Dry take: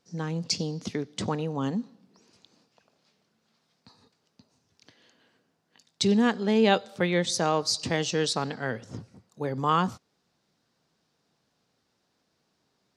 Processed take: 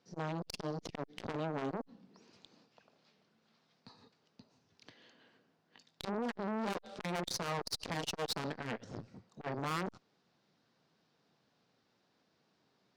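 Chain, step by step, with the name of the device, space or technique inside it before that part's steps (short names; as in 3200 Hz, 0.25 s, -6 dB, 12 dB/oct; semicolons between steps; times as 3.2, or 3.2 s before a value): valve radio (BPF 100–4700 Hz; tube stage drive 32 dB, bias 0.7; core saturation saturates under 830 Hz); gain +3.5 dB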